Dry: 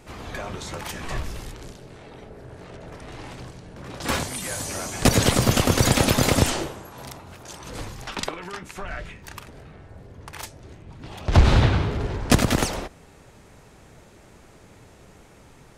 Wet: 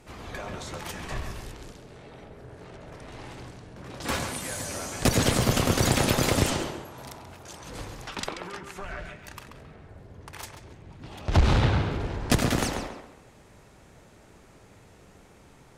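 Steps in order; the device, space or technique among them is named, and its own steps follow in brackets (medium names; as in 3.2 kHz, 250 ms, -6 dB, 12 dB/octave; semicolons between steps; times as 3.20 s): rockabilly slapback (valve stage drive 7 dB, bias 0.45; tape echo 136 ms, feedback 35%, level -5.5 dB, low-pass 3.4 kHz); trim -2.5 dB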